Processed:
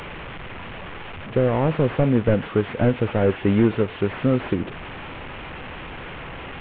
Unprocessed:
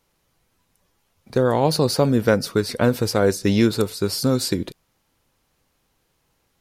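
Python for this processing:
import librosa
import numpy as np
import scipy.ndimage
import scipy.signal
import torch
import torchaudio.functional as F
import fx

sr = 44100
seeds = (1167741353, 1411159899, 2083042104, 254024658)

y = fx.delta_mod(x, sr, bps=16000, step_db=-28.5)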